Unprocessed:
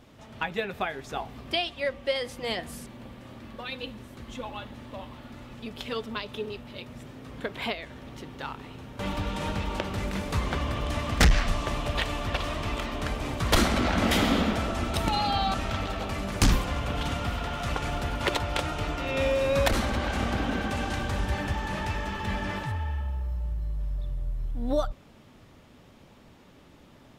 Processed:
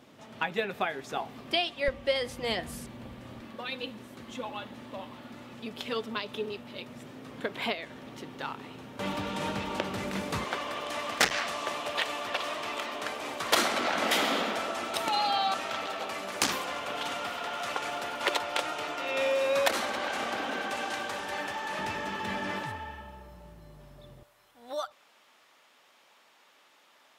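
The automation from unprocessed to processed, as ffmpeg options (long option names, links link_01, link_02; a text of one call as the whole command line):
ffmpeg -i in.wav -af "asetnsamples=nb_out_samples=441:pad=0,asendcmd='1.88 highpass f 43;3.41 highpass f 170;10.44 highpass f 450;21.79 highpass f 220;24.23 highpass f 910',highpass=170" out.wav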